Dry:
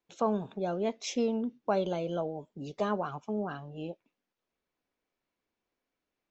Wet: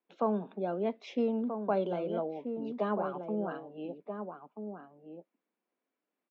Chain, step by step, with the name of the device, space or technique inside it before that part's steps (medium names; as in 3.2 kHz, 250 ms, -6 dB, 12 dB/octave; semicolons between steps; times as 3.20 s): steep high-pass 180 Hz 48 dB/octave; shout across a valley (distance through air 360 m; echo from a far wall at 220 m, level -7 dB)